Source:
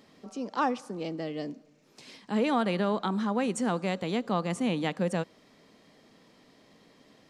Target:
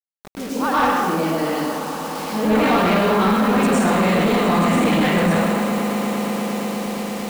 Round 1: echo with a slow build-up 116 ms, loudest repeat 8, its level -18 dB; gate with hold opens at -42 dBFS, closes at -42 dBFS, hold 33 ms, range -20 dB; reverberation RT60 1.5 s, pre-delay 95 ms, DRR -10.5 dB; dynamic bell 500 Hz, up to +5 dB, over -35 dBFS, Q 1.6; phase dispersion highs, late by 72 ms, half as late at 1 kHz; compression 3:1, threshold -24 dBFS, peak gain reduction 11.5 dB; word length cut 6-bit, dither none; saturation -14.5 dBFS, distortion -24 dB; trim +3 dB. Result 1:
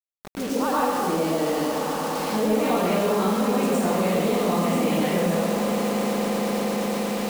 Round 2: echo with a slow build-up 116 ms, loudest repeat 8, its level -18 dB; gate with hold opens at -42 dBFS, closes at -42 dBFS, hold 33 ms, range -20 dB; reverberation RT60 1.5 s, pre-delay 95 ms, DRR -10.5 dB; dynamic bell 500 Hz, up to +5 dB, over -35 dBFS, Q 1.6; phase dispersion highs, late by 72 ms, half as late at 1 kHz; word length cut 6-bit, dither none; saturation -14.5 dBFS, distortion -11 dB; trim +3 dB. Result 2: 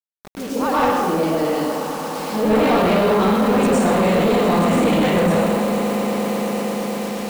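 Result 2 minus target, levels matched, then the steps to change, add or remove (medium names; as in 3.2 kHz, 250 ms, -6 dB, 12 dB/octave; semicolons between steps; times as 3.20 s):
2 kHz band -3.0 dB
change: dynamic bell 1.6 kHz, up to +5 dB, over -35 dBFS, Q 1.6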